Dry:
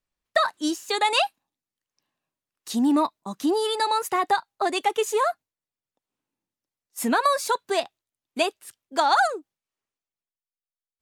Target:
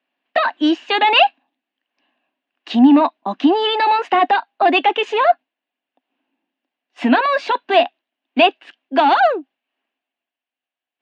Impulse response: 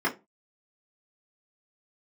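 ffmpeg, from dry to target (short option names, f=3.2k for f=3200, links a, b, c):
-af "equalizer=f=1.7k:w=3.9:g=8,apsyclip=22dB,highpass=f=250:w=0.5412,highpass=f=250:w=1.3066,equalizer=f=260:t=q:w=4:g=9,equalizer=f=440:t=q:w=4:g=-5,equalizer=f=710:t=q:w=4:g=8,equalizer=f=1.3k:t=q:w=4:g=-5,equalizer=f=1.8k:t=q:w=4:g=-4,equalizer=f=2.8k:t=q:w=4:g=8,lowpass=f=3.3k:w=0.5412,lowpass=f=3.3k:w=1.3066,volume=-10.5dB"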